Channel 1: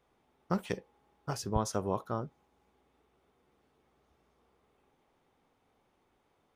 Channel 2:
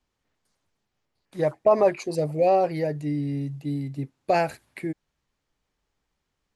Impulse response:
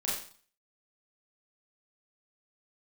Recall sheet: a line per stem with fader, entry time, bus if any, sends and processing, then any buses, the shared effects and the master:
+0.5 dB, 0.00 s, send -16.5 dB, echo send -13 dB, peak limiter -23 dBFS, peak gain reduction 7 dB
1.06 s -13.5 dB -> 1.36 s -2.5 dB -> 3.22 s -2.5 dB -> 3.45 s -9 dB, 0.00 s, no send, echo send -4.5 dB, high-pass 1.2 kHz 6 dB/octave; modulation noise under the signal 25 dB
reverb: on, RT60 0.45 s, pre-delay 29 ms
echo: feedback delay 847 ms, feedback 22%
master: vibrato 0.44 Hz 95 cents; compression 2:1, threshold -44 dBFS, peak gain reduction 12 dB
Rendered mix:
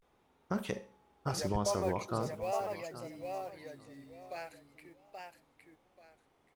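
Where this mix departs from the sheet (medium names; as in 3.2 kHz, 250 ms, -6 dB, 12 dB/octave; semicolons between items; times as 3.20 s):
stem 2 -13.5 dB -> -20.5 dB; master: missing compression 2:1, threshold -44 dBFS, peak gain reduction 12 dB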